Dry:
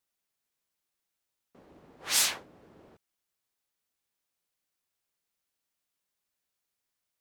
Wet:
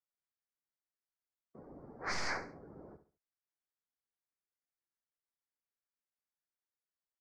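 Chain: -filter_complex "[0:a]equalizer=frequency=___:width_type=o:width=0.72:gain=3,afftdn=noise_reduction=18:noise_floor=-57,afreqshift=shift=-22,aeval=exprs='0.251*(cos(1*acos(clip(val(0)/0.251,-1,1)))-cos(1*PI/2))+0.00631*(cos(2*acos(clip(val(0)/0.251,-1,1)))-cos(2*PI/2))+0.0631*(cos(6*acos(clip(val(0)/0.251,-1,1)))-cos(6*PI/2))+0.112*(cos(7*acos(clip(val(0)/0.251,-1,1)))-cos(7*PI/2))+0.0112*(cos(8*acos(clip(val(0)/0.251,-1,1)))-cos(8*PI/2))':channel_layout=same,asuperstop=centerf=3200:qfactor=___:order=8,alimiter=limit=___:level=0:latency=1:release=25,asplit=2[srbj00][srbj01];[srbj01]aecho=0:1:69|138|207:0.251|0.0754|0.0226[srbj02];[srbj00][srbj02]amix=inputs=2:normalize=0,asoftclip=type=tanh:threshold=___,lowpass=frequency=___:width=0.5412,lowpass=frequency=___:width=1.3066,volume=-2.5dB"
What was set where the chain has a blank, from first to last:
1500, 1.4, -15.5dB, -22dB, 4900, 4900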